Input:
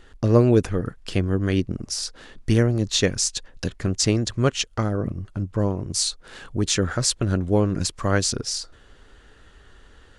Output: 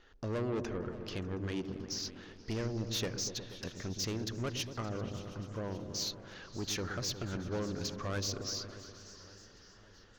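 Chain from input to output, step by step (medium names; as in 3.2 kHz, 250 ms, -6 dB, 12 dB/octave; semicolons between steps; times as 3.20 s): steep low-pass 6.7 kHz 96 dB/octave; bass shelf 270 Hz -8 dB; saturation -23 dBFS, distortion -9 dB; delay with an opening low-pass 120 ms, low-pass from 400 Hz, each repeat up 1 oct, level -6 dB; modulated delay 573 ms, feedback 63%, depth 214 cents, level -20 dB; trim -8.5 dB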